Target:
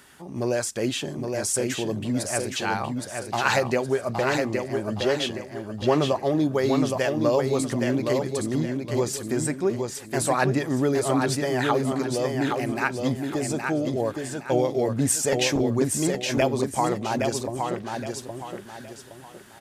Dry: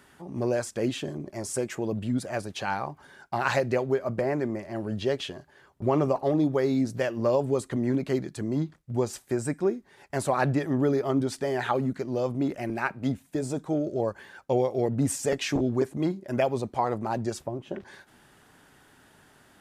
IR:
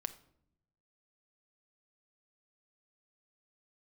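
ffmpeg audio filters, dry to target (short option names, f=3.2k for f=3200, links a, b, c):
-filter_complex "[0:a]highshelf=f=2.2k:g=8.5,asplit=2[a][b];[b]aecho=0:1:817|1634|2451|3268:0.596|0.197|0.0649|0.0214[c];[a][c]amix=inputs=2:normalize=0,volume=1dB"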